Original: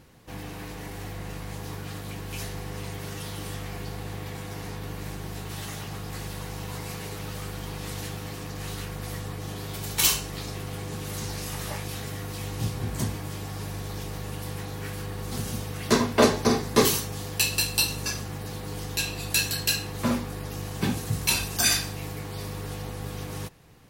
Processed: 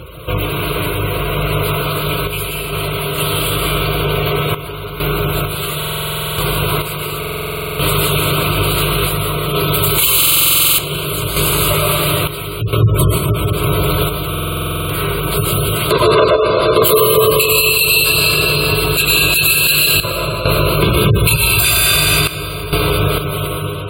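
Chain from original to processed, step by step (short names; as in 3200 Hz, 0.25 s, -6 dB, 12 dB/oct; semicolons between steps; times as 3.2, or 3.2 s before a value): 19.96–22.7 low shelf 96 Hz +6.5 dB; reverb removal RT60 0.7 s; HPF 43 Hz 24 dB/oct; high shelf 12000 Hz +6 dB; fixed phaser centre 1200 Hz, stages 8; thinning echo 0.235 s, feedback 46%, high-pass 220 Hz, level -11.5 dB; reverb RT60 2.7 s, pre-delay 70 ms, DRR -2.5 dB; spectral gate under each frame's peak -25 dB strong; random-step tremolo 2.2 Hz, depth 80%; compressor 2:1, threshold -39 dBFS, peak gain reduction 13 dB; maximiser +27.5 dB; stuck buffer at 5.78/7.19/10.18/14.29, samples 2048, times 12; gain -1 dB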